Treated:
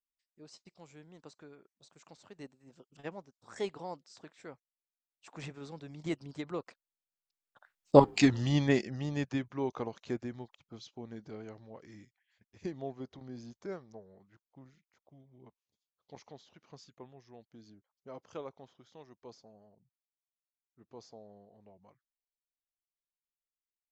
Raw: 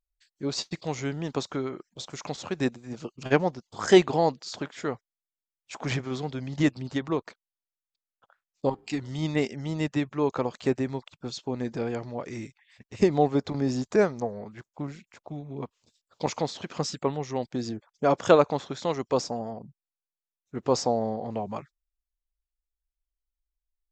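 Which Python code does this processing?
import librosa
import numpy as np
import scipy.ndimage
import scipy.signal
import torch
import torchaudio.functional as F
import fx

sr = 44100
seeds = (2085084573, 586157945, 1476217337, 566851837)

y = fx.doppler_pass(x, sr, speed_mps=28, closest_m=5.4, pass_at_s=8.1)
y = y * librosa.db_to_amplitude(9.0)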